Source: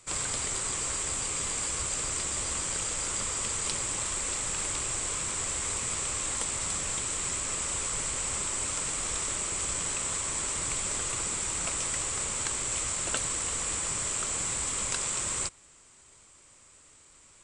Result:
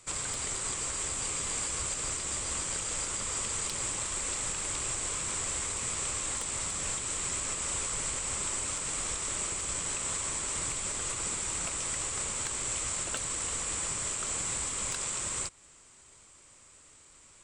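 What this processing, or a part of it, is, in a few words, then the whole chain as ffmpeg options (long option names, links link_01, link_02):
clipper into limiter: -af "asoftclip=type=hard:threshold=-18.5dB,alimiter=limit=-23dB:level=0:latency=1:release=197"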